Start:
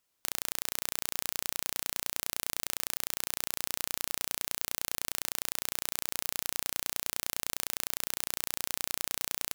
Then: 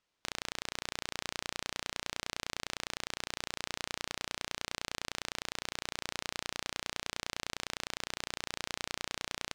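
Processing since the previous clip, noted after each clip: low-pass 4.7 kHz 12 dB/octave; trim +1 dB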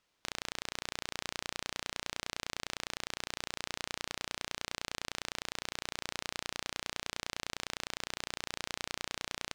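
peak limiter -19 dBFS, peak gain reduction 5 dB; trim +4.5 dB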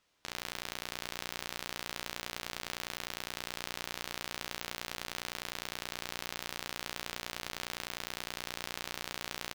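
transient shaper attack -5 dB, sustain +9 dB; on a send: early reflections 13 ms -9 dB, 52 ms -11.5 dB; on the sum: trim +2 dB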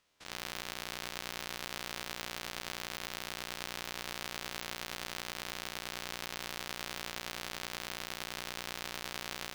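spectrogram pixelated in time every 50 ms; trim +1.5 dB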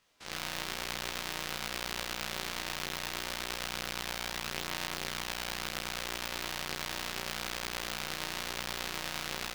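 chorus voices 2, 0.52 Hz, delay 18 ms, depth 3.7 ms; trim +7 dB

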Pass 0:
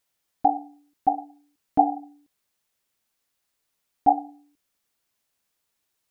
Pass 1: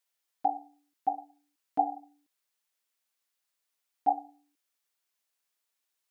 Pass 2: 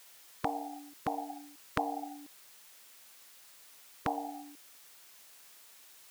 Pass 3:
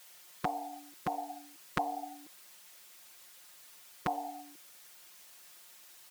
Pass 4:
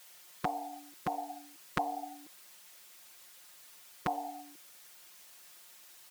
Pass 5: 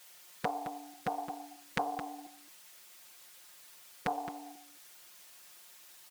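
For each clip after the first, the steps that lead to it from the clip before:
high-pass 710 Hz 6 dB/octave; trim -5 dB
spectrum-flattening compressor 4:1
comb 5.6 ms, depth 81%; trim -1.5 dB
no audible change
delay 217 ms -11 dB; loudspeaker Doppler distortion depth 0.76 ms

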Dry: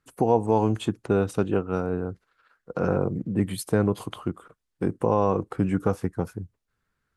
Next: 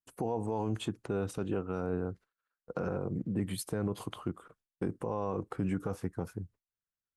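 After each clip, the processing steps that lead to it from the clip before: gate with hold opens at -45 dBFS; peak limiter -18 dBFS, peak gain reduction 10 dB; trim -5 dB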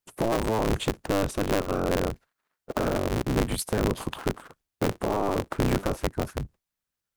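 cycle switcher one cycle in 3, inverted; trim +8 dB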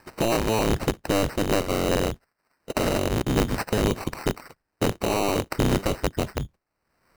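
upward compressor, threshold -39 dBFS; sample-and-hold 13×; trim +2.5 dB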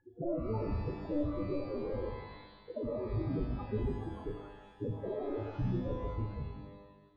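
flutter echo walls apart 6.4 m, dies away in 0.22 s; loudest bins only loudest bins 4; pitch-shifted reverb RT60 1.2 s, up +12 st, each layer -8 dB, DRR 5.5 dB; trim -7 dB

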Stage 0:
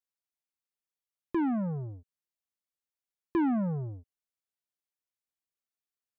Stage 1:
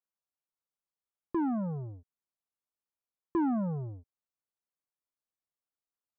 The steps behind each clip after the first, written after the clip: resonant high shelf 1.6 kHz -8.5 dB, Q 1.5; trim -2 dB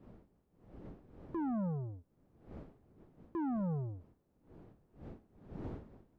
wind noise 300 Hz -52 dBFS; peak limiter -31 dBFS, peak gain reduction 7.5 dB; trim -1.5 dB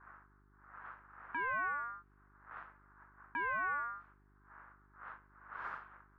level-controlled noise filter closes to 520 Hz, open at -37 dBFS; ring modulator 1.3 kHz; mains buzz 50 Hz, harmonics 8, -70 dBFS -5 dB/octave; trim +2 dB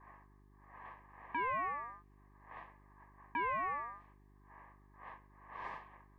Butterworth band-stop 1.4 kHz, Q 2.2; trim +4 dB

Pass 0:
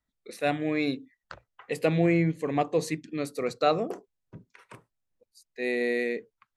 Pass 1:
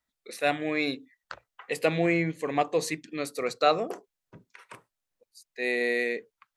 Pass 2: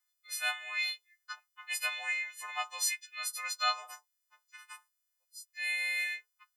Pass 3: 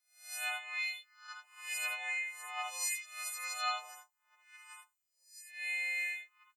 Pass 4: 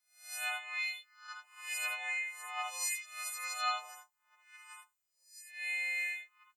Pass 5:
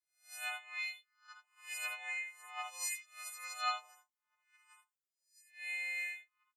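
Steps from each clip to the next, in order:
bass shelf 370 Hz -11.5 dB; trim +4 dB
partials quantised in pitch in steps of 3 st; steep high-pass 870 Hz 36 dB/octave; trim -6 dB
reverse spectral sustain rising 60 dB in 0.45 s; early reflections 57 ms -5 dB, 76 ms -6.5 dB; trim -6 dB
peaking EQ 1.2 kHz +2 dB
upward expansion 1.5:1, over -57 dBFS; trim -1 dB

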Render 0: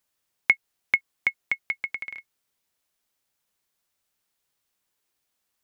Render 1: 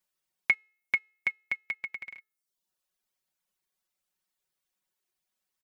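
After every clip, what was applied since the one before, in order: de-hum 431.2 Hz, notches 34; reverb removal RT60 0.71 s; comb 5.4 ms, depth 68%; trim -6.5 dB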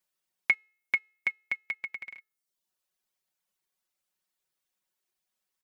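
bass shelf 160 Hz -3.5 dB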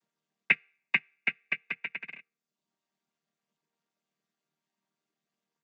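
vocoder on a held chord major triad, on D#3; trim +2 dB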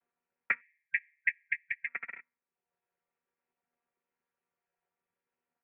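spectral selection erased 0.61–1.88 s, 380–1800 Hz; peak limiter -15 dBFS, peak gain reduction 7.5 dB; mistuned SSB -220 Hz 450–2700 Hz; trim +1 dB

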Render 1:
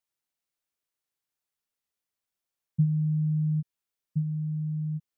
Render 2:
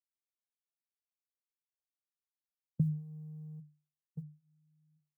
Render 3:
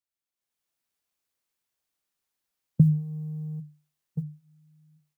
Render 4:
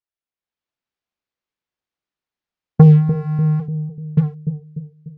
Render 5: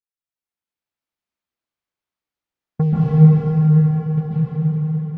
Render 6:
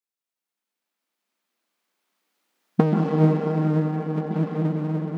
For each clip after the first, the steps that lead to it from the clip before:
tilt EQ +3 dB/octave; gate -32 dBFS, range -36 dB; hum notches 50/100/150 Hz; trim +5 dB
level rider gain up to 12 dB
waveshaping leveller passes 3; distance through air 160 m; bucket-brigade echo 295 ms, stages 1024, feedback 47%, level -7.5 dB; trim +6 dB
plate-style reverb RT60 4.8 s, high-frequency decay 0.8×, pre-delay 120 ms, DRR -10 dB; trim -10.5 dB
partial rectifier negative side -7 dB; recorder AGC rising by 5.6 dB/s; brick-wall FIR high-pass 170 Hz; trim +4 dB

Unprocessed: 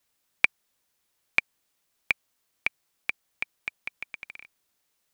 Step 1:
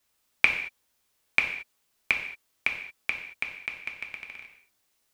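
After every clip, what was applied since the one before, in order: gated-style reverb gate 250 ms falling, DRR 1.5 dB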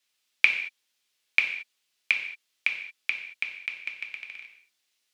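frequency weighting D; trim -8.5 dB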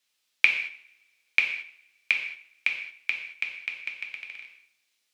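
two-slope reverb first 0.6 s, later 1.8 s, from -21 dB, DRR 10 dB

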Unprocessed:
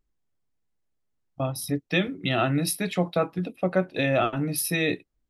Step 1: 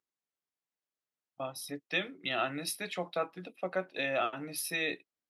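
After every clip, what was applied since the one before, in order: frequency weighting A; trim -6.5 dB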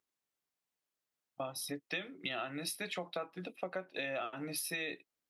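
compression, threshold -39 dBFS, peak gain reduction 12 dB; trim +3 dB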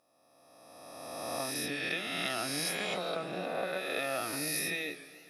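reverse spectral sustain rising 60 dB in 2.07 s; modulated delay 140 ms, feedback 74%, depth 160 cents, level -18 dB

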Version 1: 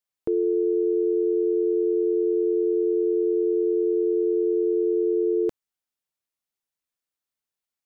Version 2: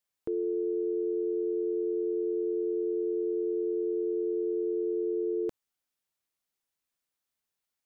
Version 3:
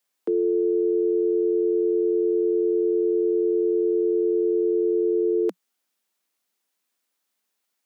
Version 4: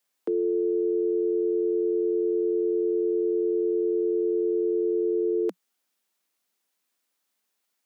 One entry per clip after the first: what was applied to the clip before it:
peak limiter -26.5 dBFS, peak gain reduction 10 dB; trim +2 dB
steep high-pass 180 Hz 96 dB/octave; trim +8.5 dB
peak limiter -19 dBFS, peak gain reduction 3.5 dB

